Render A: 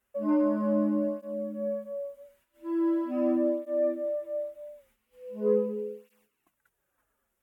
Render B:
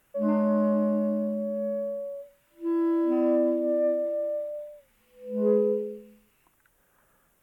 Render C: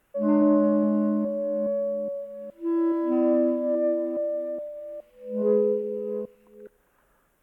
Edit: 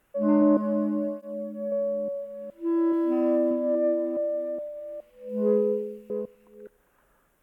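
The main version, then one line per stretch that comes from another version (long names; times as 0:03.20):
C
0:00.57–0:01.72: punch in from A
0:02.93–0:03.51: punch in from B
0:05.29–0:06.10: punch in from B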